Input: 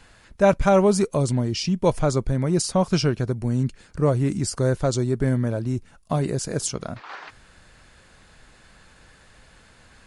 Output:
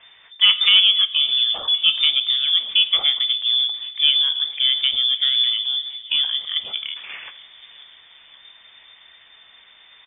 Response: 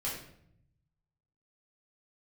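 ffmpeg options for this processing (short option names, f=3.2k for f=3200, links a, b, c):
-filter_complex "[0:a]asplit=2[a][b];[1:a]atrim=start_sample=2205[c];[b][c]afir=irnorm=-1:irlink=0,volume=-13.5dB[d];[a][d]amix=inputs=2:normalize=0,lowpass=f=3.1k:t=q:w=0.5098,lowpass=f=3.1k:t=q:w=0.6013,lowpass=f=3.1k:t=q:w=0.9,lowpass=f=3.1k:t=q:w=2.563,afreqshift=-3600,asplit=2[e][f];[f]aecho=0:1:532|1064|1596|2128|2660:0.0891|0.0526|0.031|0.0183|0.0108[g];[e][g]amix=inputs=2:normalize=0,volume=1dB"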